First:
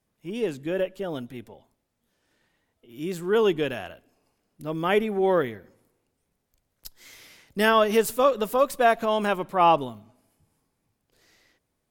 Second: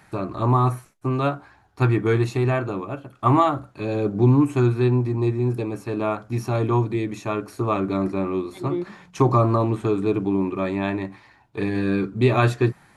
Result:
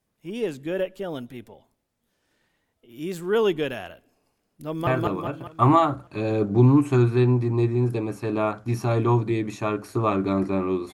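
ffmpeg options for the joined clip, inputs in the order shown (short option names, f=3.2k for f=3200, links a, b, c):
-filter_complex "[0:a]apad=whole_dur=10.93,atrim=end=10.93,atrim=end=4.872[a];[1:a]atrim=start=2.508:end=8.57[b];[a][b]acrossfade=d=0.004:c1=hsin:c2=hsin,asplit=2[c][d];[d]afade=t=in:st=4.48:d=0.01,afade=t=out:st=4.87:d=0.01,aecho=0:1:200|400|600|800|1000|1200|1400:0.944061|0.47203|0.236015|0.118008|0.0590038|0.0295019|0.014751[e];[c][e]amix=inputs=2:normalize=0"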